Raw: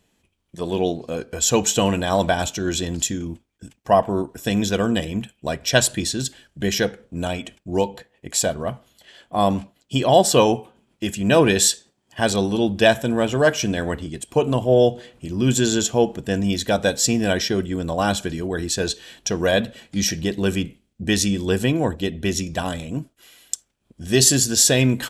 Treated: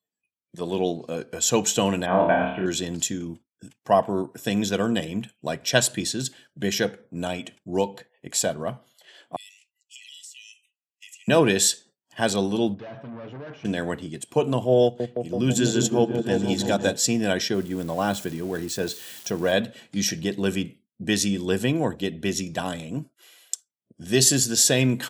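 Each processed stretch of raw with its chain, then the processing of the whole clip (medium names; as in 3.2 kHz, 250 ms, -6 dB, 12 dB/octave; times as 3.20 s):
2.06–2.66 s: steep low-pass 2.7 kHz 48 dB/octave + flutter echo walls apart 4.6 m, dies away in 0.61 s
9.36–11.28 s: rippled Chebyshev high-pass 1.9 kHz, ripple 9 dB + compression 10:1, threshold -37 dBFS
12.74–13.65 s: comb 7.2 ms, depth 36% + valve stage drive 31 dB, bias 0.45 + tape spacing loss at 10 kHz 39 dB
14.83–16.96 s: delay with an opening low-pass 166 ms, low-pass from 400 Hz, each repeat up 1 oct, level -3 dB + transient shaper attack -2 dB, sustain -6 dB
17.54–19.52 s: zero-crossing glitches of -24 dBFS + treble shelf 2.3 kHz -7 dB
whole clip: spectral noise reduction 25 dB; high-pass 110 Hz 24 dB/octave; trim -3 dB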